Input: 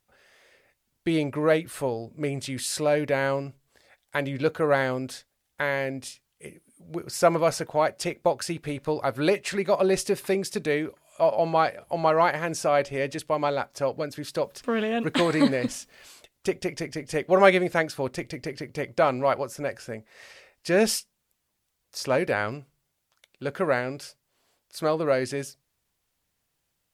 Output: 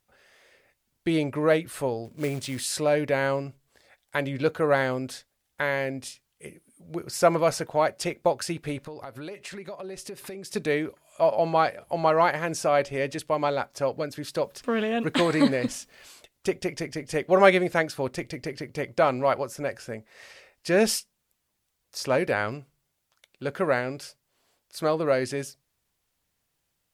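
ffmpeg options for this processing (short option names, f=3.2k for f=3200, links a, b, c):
-filter_complex "[0:a]asplit=3[a][b][c];[a]afade=t=out:st=2.04:d=0.02[d];[b]acrusher=bits=4:mode=log:mix=0:aa=0.000001,afade=t=in:st=2.04:d=0.02,afade=t=out:st=2.63:d=0.02[e];[c]afade=t=in:st=2.63:d=0.02[f];[d][e][f]amix=inputs=3:normalize=0,asettb=1/sr,asplit=3[g][h][i];[g]atrim=end=8.814[j];[h]atrim=start=8.81:end=10.51,asetpts=PTS-STARTPTS,afade=t=in:d=0.004:c=qsin,afade=t=out:st=1.696:d=0.004:c=qsin,acompressor=threshold=-36dB:ratio=6:attack=3.2:release=140:knee=1:detection=peak[k];[i]atrim=start=10.506[l];[j][k]acrossfade=d=0.004:c1=hsin:c2=qsin[m];[m][l]acrossfade=d=0.004:c1=qsin:c2=hsin"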